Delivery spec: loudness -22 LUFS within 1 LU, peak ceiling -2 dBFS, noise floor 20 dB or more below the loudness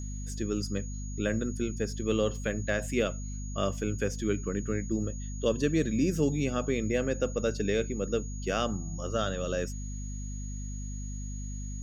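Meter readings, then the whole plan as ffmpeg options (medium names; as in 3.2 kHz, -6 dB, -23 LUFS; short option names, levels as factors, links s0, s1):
hum 50 Hz; highest harmonic 250 Hz; hum level -34 dBFS; steady tone 6.7 kHz; tone level -46 dBFS; loudness -31.5 LUFS; peak level -14.5 dBFS; loudness target -22.0 LUFS
-> -af "bandreject=f=50:t=h:w=6,bandreject=f=100:t=h:w=6,bandreject=f=150:t=h:w=6,bandreject=f=200:t=h:w=6,bandreject=f=250:t=h:w=6"
-af "bandreject=f=6700:w=30"
-af "volume=2.99"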